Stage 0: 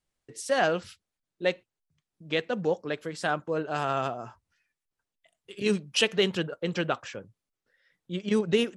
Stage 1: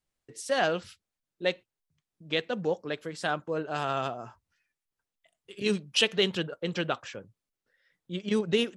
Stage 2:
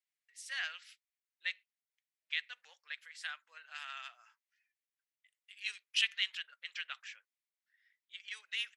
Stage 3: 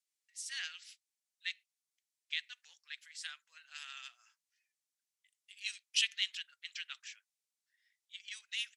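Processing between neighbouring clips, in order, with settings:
dynamic equaliser 3,600 Hz, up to +5 dB, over −45 dBFS, Q 2; level −2 dB
four-pole ladder high-pass 1,700 Hz, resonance 50%
resonant band-pass 7,000 Hz, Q 1; level +7 dB

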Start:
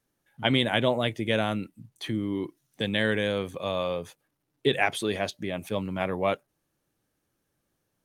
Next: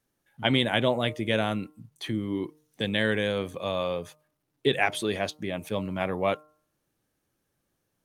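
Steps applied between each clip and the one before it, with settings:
hum removal 152.6 Hz, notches 9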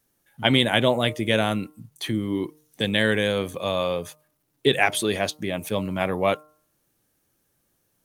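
high-shelf EQ 7,300 Hz +9.5 dB
level +4 dB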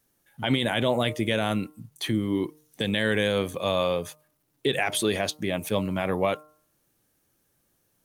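brickwall limiter −13 dBFS, peak gain reduction 9.5 dB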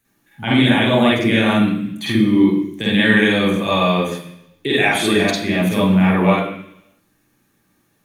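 convolution reverb RT60 0.70 s, pre-delay 46 ms, DRR −7 dB
level +1.5 dB

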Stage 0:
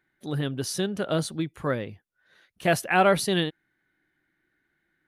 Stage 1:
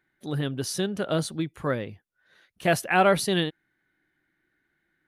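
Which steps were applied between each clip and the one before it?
no processing that can be heard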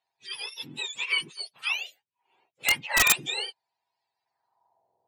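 frequency axis turned over on the octave scale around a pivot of 1,200 Hz
band-pass filter sweep 2,600 Hz → 520 Hz, 0:04.20–0:04.92
wrap-around overflow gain 21 dB
level +8 dB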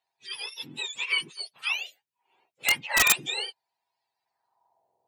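low-shelf EQ 90 Hz −6 dB

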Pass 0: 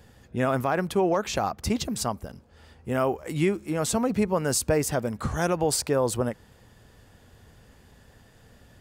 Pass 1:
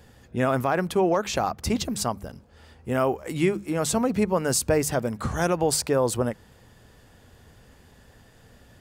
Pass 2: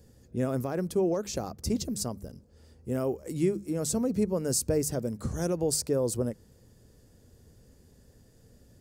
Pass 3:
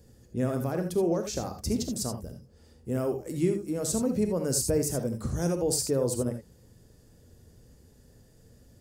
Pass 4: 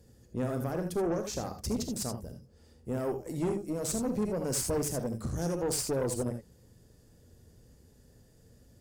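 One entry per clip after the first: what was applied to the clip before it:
mains-hum notches 50/100/150/200 Hz; level +1.5 dB
flat-topped bell 1,600 Hz −12 dB 2.7 octaves; level −3.5 dB
reverb whose tail is shaped and stops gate 100 ms rising, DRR 6 dB
tube saturation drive 25 dB, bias 0.55

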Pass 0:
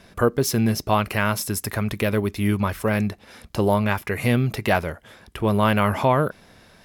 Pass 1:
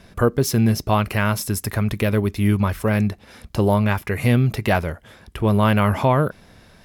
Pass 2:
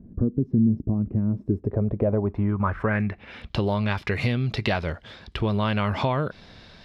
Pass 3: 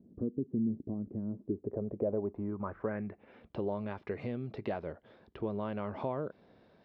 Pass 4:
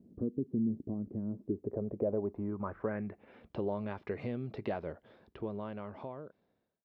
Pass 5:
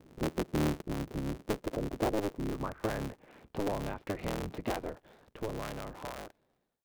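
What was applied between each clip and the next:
low-shelf EQ 170 Hz +7 dB
downward compressor, threshold −21 dBFS, peak gain reduction 9.5 dB; low-pass filter sweep 260 Hz → 4,200 Hz, 0:01.25–0:03.71
resonant band-pass 420 Hz, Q 1; level −7 dB
fade-out on the ending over 1.94 s
sub-harmonics by changed cycles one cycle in 3, inverted; level +1.5 dB

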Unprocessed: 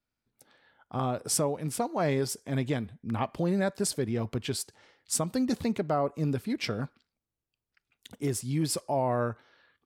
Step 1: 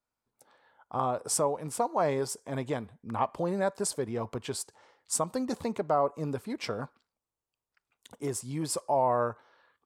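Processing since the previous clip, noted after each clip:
octave-band graphic EQ 500/1,000/8,000 Hz +6/+12/+7 dB
level −7 dB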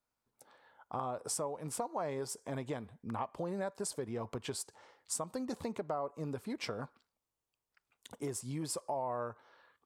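downward compressor 3 to 1, threshold −37 dBFS, peak gain reduction 11.5 dB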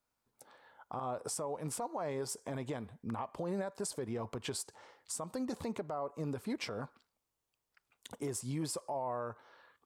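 brickwall limiter −31.5 dBFS, peak gain reduction 8.5 dB
level +2.5 dB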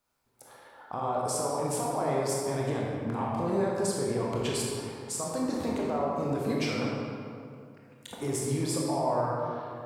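convolution reverb RT60 2.4 s, pre-delay 21 ms, DRR −4 dB
level +4 dB

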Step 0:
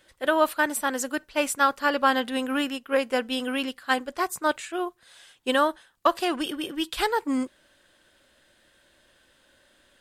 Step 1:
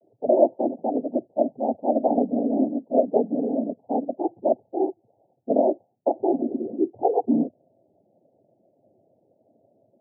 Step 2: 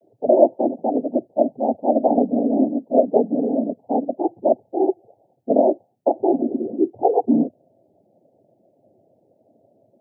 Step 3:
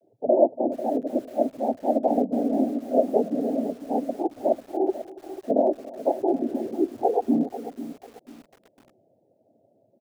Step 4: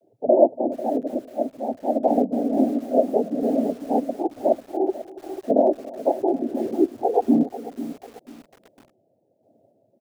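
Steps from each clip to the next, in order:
cochlear-implant simulation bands 16; Butterworth low-pass 800 Hz 96 dB per octave; level +5.5 dB
gain on a spectral selection 0:04.88–0:05.14, 340–870 Hz +10 dB; level +4 dB
single-tap delay 283 ms −19 dB; feedback echo at a low word length 493 ms, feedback 35%, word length 6 bits, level −13 dB; level −5 dB
sample-and-hold tremolo; level +4.5 dB

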